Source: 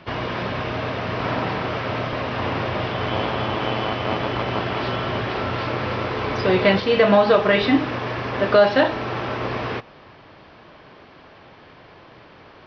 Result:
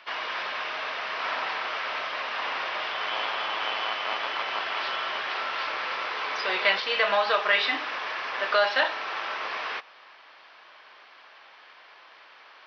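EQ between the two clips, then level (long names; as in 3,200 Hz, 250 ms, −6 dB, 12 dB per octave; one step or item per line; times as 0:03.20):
high-pass filter 1,100 Hz 12 dB per octave
0.0 dB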